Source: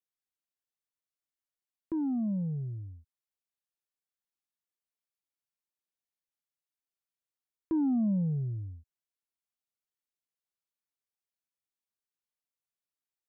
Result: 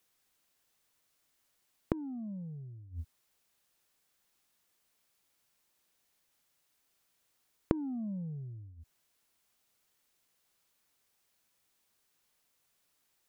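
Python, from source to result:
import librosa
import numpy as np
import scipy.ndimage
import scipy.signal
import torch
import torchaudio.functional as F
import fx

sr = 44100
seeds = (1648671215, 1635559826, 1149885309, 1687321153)

y = fx.gate_flip(x, sr, shuts_db=-39.0, range_db=-28)
y = y * librosa.db_to_amplitude(18.0)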